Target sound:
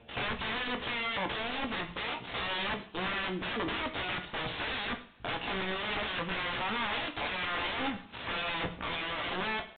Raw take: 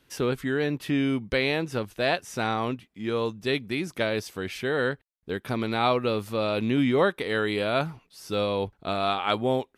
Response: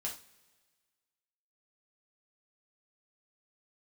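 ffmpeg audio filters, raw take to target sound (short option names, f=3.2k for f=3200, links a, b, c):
-filter_complex "[0:a]dynaudnorm=f=120:g=7:m=12.5dB,alimiter=limit=-9dB:level=0:latency=1:release=63,acompressor=threshold=-34dB:ratio=2.5,aphaser=in_gain=1:out_gain=1:delay=1.9:decay=0.38:speed=0.82:type=triangular,asetrate=74167,aresample=44100,atempo=0.594604,aeval=exprs='(mod(39.8*val(0)+1,2)-1)/39.8':c=same,asplit=2[a][b];[b]adelay=16,volume=-13dB[c];[a][c]amix=inputs=2:normalize=0,asplit=2[d][e];[1:a]atrim=start_sample=2205,asetrate=30429,aresample=44100[f];[e][f]afir=irnorm=-1:irlink=0,volume=-4.5dB[g];[d][g]amix=inputs=2:normalize=0,aresample=8000,aresample=44100,volume=1.5dB"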